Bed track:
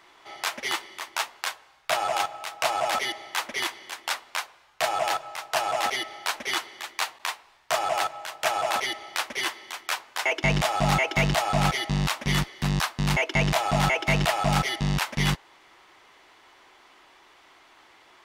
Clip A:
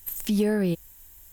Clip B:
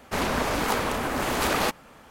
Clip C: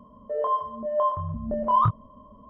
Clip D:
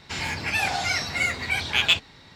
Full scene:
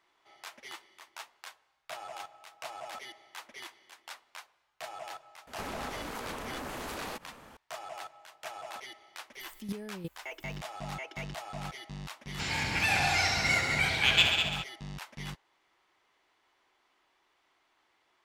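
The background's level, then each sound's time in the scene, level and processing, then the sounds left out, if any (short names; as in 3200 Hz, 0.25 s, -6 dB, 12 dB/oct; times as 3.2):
bed track -17 dB
5.47 add B -2.5 dB + compressor, threshold -34 dBFS
9.33 add A -10 dB, fades 0.10 s + chopper 2.8 Hz, depth 65%, duty 10%
12.29 add D -4 dB + multi-head echo 67 ms, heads all three, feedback 48%, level -9 dB
not used: C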